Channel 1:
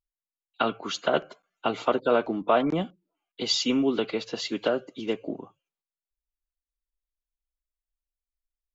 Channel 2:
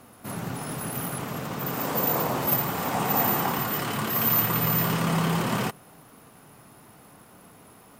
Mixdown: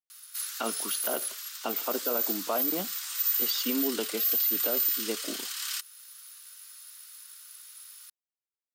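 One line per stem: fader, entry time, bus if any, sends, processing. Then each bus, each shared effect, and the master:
-5.5 dB, 0.00 s, no send, none
-0.5 dB, 0.10 s, no send, steep high-pass 1.4 kHz 36 dB/octave; resonant high shelf 3.1 kHz +10 dB, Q 1.5; auto duck -8 dB, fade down 1.90 s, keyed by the first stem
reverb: none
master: brick-wall FIR high-pass 180 Hz; peak limiter -18.5 dBFS, peak gain reduction 8.5 dB

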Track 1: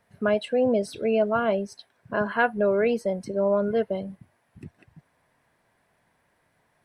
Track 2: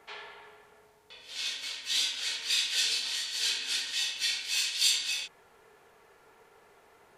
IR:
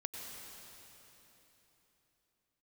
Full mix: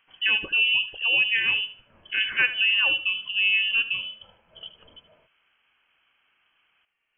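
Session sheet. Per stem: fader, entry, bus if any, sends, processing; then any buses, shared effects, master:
0.0 dB, 0.00 s, no send, echo send -14 dB, none
-11.0 dB, 0.00 s, no send, no echo send, auto duck -11 dB, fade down 0.20 s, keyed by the first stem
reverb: none
echo: feedback delay 76 ms, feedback 26%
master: frequency inversion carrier 3.2 kHz

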